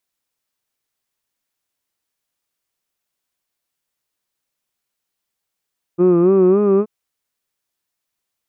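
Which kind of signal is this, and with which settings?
vowel from formants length 0.88 s, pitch 171 Hz, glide +3.5 semitones, vibrato 3.6 Hz, F1 370 Hz, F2 1,200 Hz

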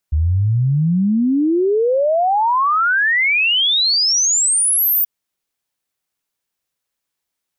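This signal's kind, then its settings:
exponential sine sweep 73 Hz → 15,000 Hz 4.93 s −12.5 dBFS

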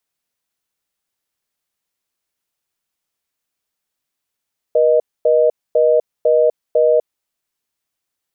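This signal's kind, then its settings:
call progress tone reorder tone, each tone −12.5 dBFS 2.31 s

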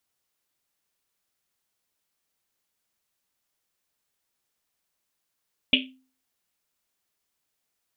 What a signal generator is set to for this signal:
drum after Risset, pitch 260 Hz, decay 0.42 s, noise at 2,900 Hz, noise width 1,000 Hz, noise 60%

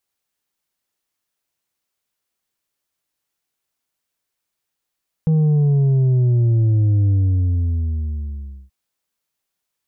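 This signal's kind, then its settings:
bass drop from 160 Hz, over 3.43 s, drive 4.5 dB, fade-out 1.61 s, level −13 dB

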